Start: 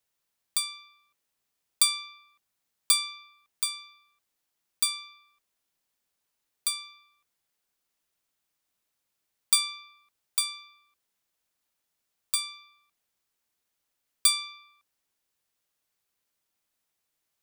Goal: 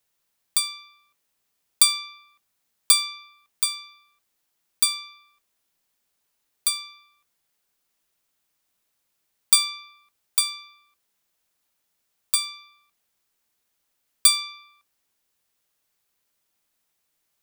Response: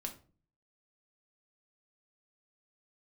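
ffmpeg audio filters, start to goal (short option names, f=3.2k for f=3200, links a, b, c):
-filter_complex "[0:a]asplit=2[a][b];[1:a]atrim=start_sample=2205,highshelf=f=8.7k:g=10.5[c];[b][c]afir=irnorm=-1:irlink=0,volume=-13.5dB[d];[a][d]amix=inputs=2:normalize=0,volume=3.5dB"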